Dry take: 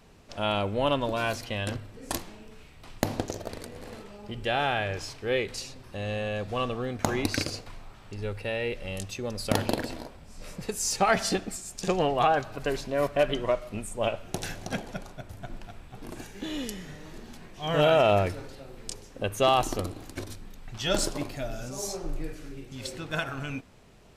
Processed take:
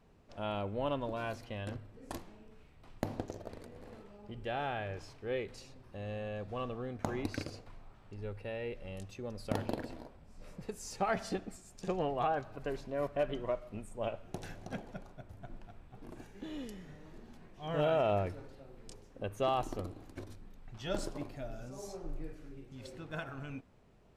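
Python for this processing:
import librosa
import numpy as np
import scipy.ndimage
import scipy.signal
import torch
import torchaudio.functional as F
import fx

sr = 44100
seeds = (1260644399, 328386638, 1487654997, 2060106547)

y = fx.high_shelf(x, sr, hz=2200.0, db=-10.5)
y = y * 10.0 ** (-8.0 / 20.0)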